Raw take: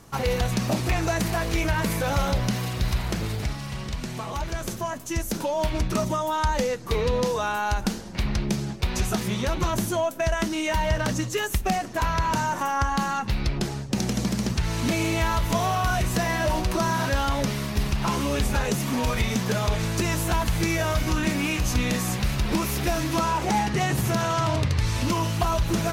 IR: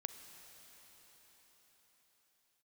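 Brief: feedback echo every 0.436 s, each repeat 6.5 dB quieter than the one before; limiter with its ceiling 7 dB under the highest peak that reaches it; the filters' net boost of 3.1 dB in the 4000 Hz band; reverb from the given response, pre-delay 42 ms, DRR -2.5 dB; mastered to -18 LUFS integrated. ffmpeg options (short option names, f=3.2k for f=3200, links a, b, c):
-filter_complex "[0:a]equalizer=f=4k:t=o:g=4,alimiter=limit=-18.5dB:level=0:latency=1,aecho=1:1:436|872|1308|1744|2180|2616:0.473|0.222|0.105|0.0491|0.0231|0.0109,asplit=2[a][b];[1:a]atrim=start_sample=2205,adelay=42[c];[b][c]afir=irnorm=-1:irlink=0,volume=5dB[d];[a][d]amix=inputs=2:normalize=0,volume=4dB"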